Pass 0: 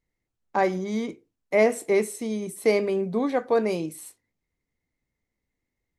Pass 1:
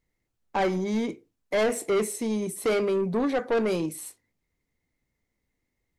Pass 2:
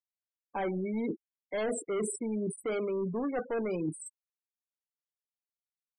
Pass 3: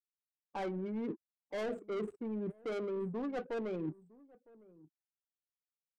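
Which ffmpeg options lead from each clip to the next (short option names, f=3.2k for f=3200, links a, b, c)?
-af "asoftclip=type=tanh:threshold=-23dB,volume=3dB"
-af "afftfilt=real='re*gte(hypot(re,im),0.0355)':imag='im*gte(hypot(re,im),0.0355)':win_size=1024:overlap=0.75,areverse,acompressor=threshold=-34dB:ratio=16,areverse,volume=4dB"
-af "aecho=1:1:958:0.0841,adynamicsmooth=sensitivity=7:basefreq=500,volume=-5dB"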